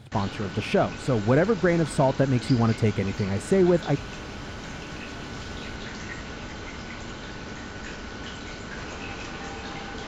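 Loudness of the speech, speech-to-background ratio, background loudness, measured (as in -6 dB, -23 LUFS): -24.0 LUFS, 12.5 dB, -36.5 LUFS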